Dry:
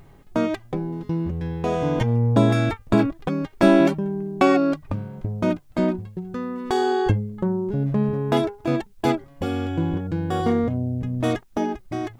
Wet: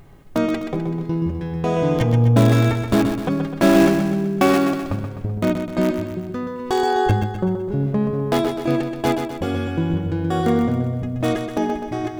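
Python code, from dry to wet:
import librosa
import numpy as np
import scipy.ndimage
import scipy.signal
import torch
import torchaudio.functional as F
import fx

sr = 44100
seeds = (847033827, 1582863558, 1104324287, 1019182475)

p1 = (np.mod(10.0 ** (11.5 / 20.0) * x + 1.0, 2.0) - 1.0) / 10.0 ** (11.5 / 20.0)
p2 = x + F.gain(torch.from_numpy(p1), -11.0).numpy()
p3 = fx.notch(p2, sr, hz=920.0, q=27.0)
y = fx.echo_feedback(p3, sr, ms=127, feedback_pct=52, wet_db=-7)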